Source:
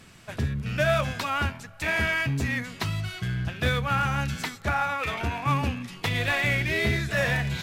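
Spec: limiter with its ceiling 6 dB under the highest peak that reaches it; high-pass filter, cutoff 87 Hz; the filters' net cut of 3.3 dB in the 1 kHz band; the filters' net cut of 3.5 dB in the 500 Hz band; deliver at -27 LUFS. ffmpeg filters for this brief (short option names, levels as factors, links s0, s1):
-af "highpass=87,equalizer=f=500:t=o:g=-3,equalizer=f=1000:t=o:g=-4,volume=1.33,alimiter=limit=0.15:level=0:latency=1"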